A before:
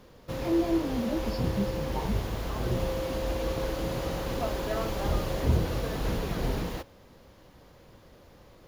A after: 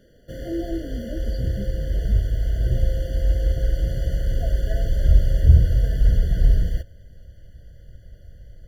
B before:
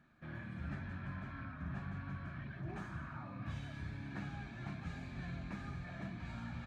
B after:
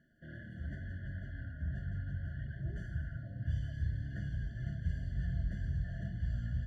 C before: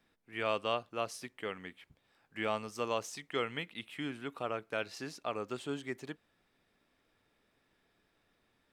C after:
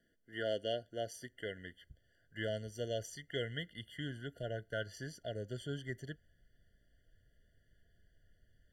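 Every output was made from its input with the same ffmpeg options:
-af "asubboost=boost=11:cutoff=86,afftfilt=real='re*eq(mod(floor(b*sr/1024/700),2),0)':imag='im*eq(mod(floor(b*sr/1024/700),2),0)':win_size=1024:overlap=0.75,volume=0.891"

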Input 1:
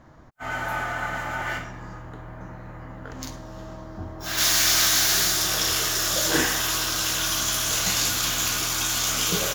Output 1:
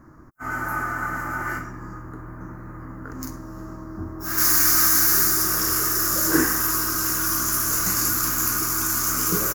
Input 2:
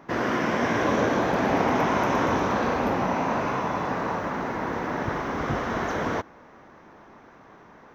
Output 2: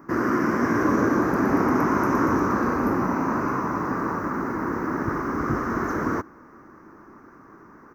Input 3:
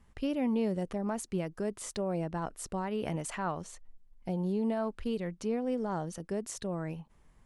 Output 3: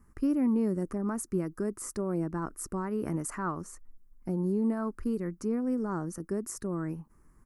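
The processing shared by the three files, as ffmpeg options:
-af "firequalizer=gain_entry='entry(170,0);entry(330,6);entry(490,-5);entry(720,-9);entry(1200,4);entry(3400,-23);entry(4900,-5);entry(12000,7)':delay=0.05:min_phase=1,volume=1.19"

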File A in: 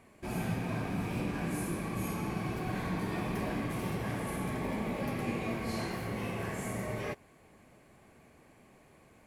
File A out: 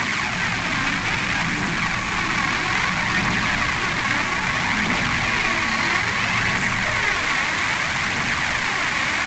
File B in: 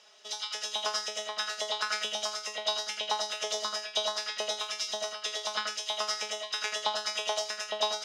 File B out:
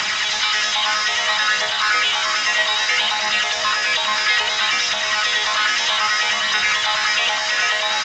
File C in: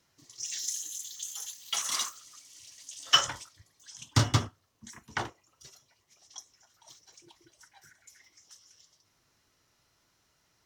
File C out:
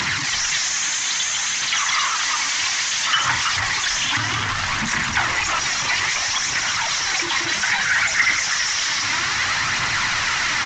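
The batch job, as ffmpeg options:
-filter_complex "[0:a]aeval=exprs='val(0)+0.5*0.0841*sgn(val(0))':c=same,highpass=83,acrossover=split=2600[s0][s1];[s1]acompressor=threshold=0.02:ratio=4:attack=1:release=60[s2];[s0][s2]amix=inputs=2:normalize=0,highshelf=f=4600:g=11,alimiter=limit=0.1:level=0:latency=1:release=19,aphaser=in_gain=1:out_gain=1:delay=3.8:decay=0.39:speed=0.61:type=triangular,aresample=16000,acrusher=bits=6:mix=0:aa=0.000001,aresample=44100,equalizer=f=500:t=o:w=1:g=-11,equalizer=f=1000:t=o:w=1:g=6,equalizer=f=2000:t=o:w=1:g=12,equalizer=f=4000:t=o:w=1:g=4,asplit=5[s3][s4][s5][s6][s7];[s4]adelay=327,afreqshift=-140,volume=0.398[s8];[s5]adelay=654,afreqshift=-280,volume=0.132[s9];[s6]adelay=981,afreqshift=-420,volume=0.0432[s10];[s7]adelay=1308,afreqshift=-560,volume=0.0143[s11];[s3][s8][s9][s10][s11]amix=inputs=5:normalize=0,volume=1.19"

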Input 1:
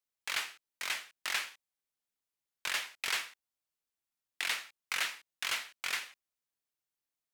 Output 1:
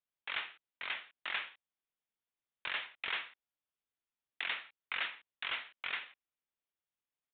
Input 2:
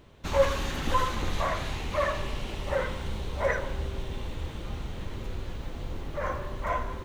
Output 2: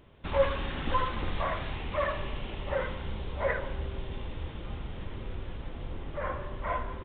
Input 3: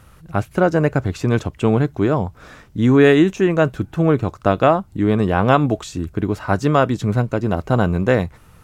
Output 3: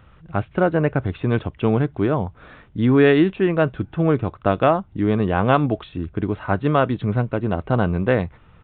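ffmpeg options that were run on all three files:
-af "aresample=8000,aresample=44100,volume=0.75"

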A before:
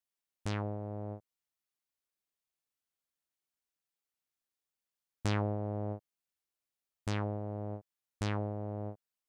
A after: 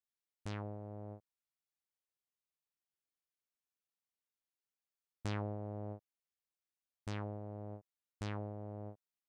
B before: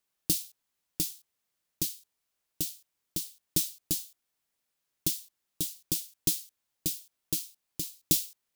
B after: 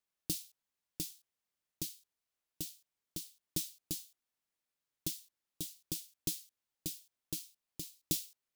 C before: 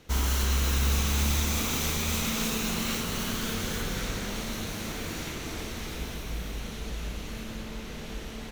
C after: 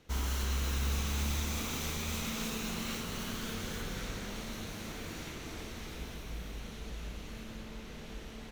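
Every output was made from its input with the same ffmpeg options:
-af "highshelf=f=6800:g=-3.5,volume=0.447"

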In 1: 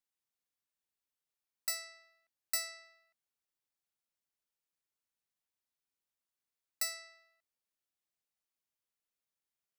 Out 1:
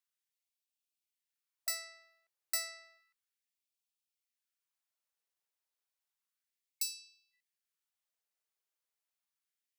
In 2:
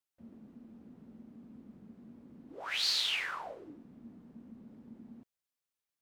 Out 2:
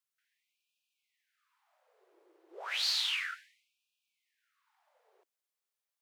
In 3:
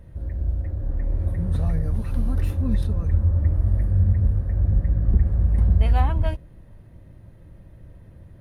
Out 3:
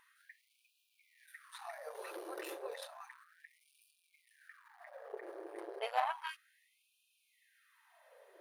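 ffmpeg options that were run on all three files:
-af "asoftclip=type=tanh:threshold=0.126,afftfilt=real='re*gte(b*sr/1024,310*pow(2400/310,0.5+0.5*sin(2*PI*0.32*pts/sr)))':imag='im*gte(b*sr/1024,310*pow(2400/310,0.5+0.5*sin(2*PI*0.32*pts/sr)))':win_size=1024:overlap=0.75"

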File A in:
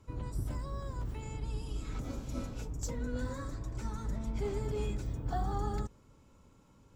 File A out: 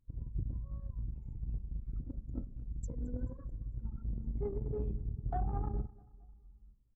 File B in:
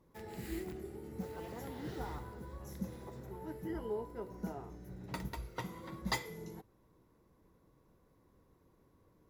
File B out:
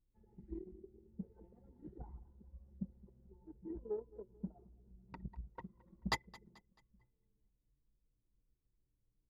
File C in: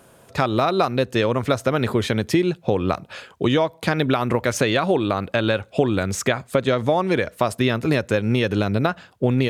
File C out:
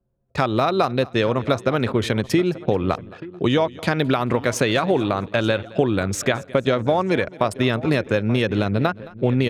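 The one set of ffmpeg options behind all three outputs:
-filter_complex "[0:a]asplit=2[s0][s1];[s1]aecho=0:1:882:0.15[s2];[s0][s2]amix=inputs=2:normalize=0,anlmdn=25.1,asplit=2[s3][s4];[s4]aecho=0:1:218|436|654:0.0841|0.0353|0.0148[s5];[s3][s5]amix=inputs=2:normalize=0"

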